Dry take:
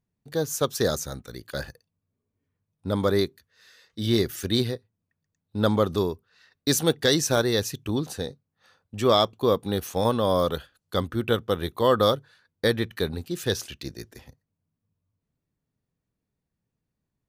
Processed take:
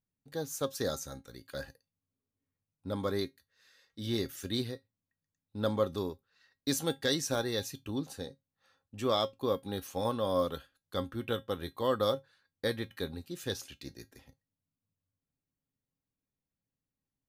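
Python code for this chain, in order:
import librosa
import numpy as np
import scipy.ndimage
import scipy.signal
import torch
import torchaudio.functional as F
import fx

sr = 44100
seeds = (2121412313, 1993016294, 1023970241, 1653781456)

y = fx.comb_fb(x, sr, f0_hz=270.0, decay_s=0.16, harmonics='all', damping=0.0, mix_pct=70)
y = y * 10.0 ** (-2.0 / 20.0)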